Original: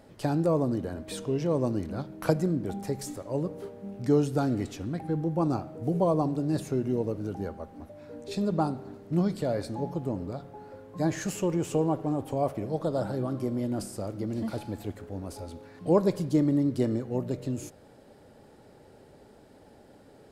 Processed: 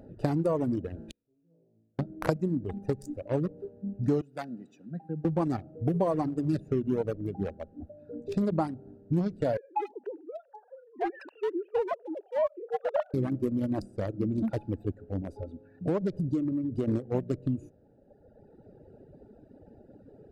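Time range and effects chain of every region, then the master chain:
0.95–1.99 CVSD 64 kbps + flutter echo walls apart 3.1 m, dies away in 1 s + flipped gate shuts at -26 dBFS, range -40 dB
4.21–5.25 steep high-pass 160 Hz + bell 360 Hz -11.5 dB 2.5 oct
9.57–13.14 sine-wave speech + HPF 630 Hz + echo 81 ms -20 dB
15.34–16.88 compressor 3:1, threshold -29 dBFS + high shelf 10000 Hz -6 dB
whole clip: Wiener smoothing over 41 samples; reverb removal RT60 1.9 s; compressor 5:1, threshold -31 dBFS; gain +7 dB

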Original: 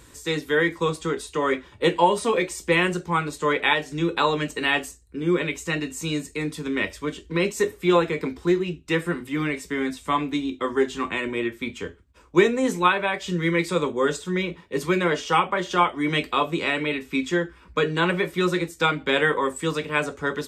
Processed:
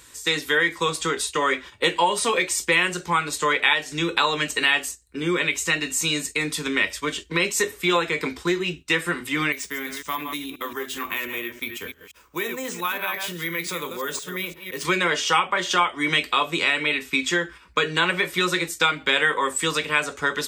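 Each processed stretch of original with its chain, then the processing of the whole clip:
9.52–14.85 reverse delay 0.173 s, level -10 dB + compressor 2:1, threshold -39 dBFS + careless resampling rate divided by 3×, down none, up hold
whole clip: gate -39 dBFS, range -7 dB; tilt shelf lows -7 dB, about 870 Hz; compressor 2:1, threshold -27 dBFS; gain +5.5 dB

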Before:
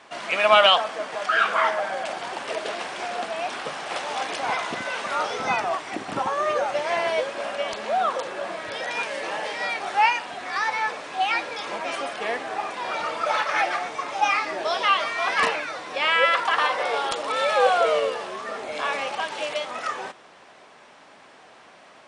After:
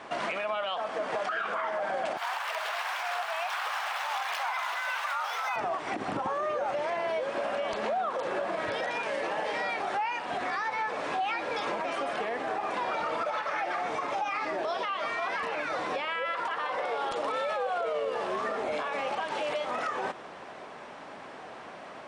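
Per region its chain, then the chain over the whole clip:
2.17–5.56 median filter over 5 samples + HPF 870 Hz 24 dB/oct + high shelf 8200 Hz +8 dB
whole clip: high shelf 2300 Hz -10.5 dB; compressor 4:1, threshold -34 dBFS; limiter -30.5 dBFS; gain +7.5 dB

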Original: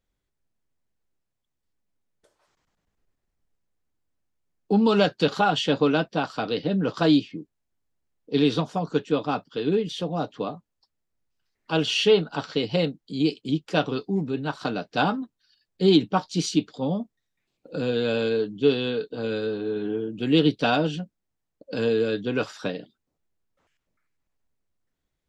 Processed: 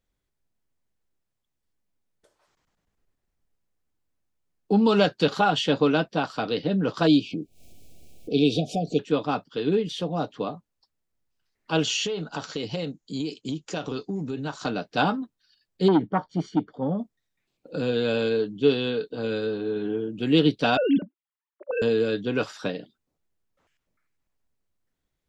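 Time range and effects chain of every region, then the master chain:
7.07–8.99 upward compressor, threshold -21 dBFS + brick-wall FIR band-stop 780–2200 Hz
11.83–14.66 high shelf 4700 Hz -6 dB + compressor 12:1, threshold -25 dBFS + synth low-pass 6800 Hz, resonance Q 7.5
15.88–16.99 polynomial smoothing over 41 samples + core saturation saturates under 470 Hz
20.77–21.82 sine-wave speech + bell 280 Hz +11.5 dB 0.35 oct
whole clip: dry

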